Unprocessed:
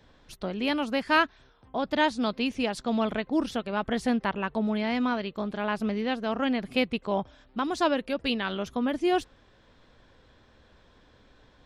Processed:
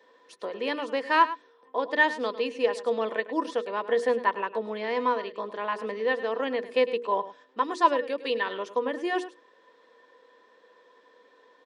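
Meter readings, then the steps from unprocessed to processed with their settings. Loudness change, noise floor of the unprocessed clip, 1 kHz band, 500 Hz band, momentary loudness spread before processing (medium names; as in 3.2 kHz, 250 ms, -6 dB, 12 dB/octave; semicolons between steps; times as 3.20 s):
+0.5 dB, -60 dBFS, +3.5 dB, +3.5 dB, 6 LU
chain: high-pass 280 Hz 24 dB/octave; hum notches 60/120/180/240/300/360/420/480 Hz; small resonant body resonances 480/1000/1800 Hz, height 17 dB, ringing for 70 ms; on a send: delay 104 ms -14.5 dB; on the sum: resampled via 22.05 kHz; trim -4 dB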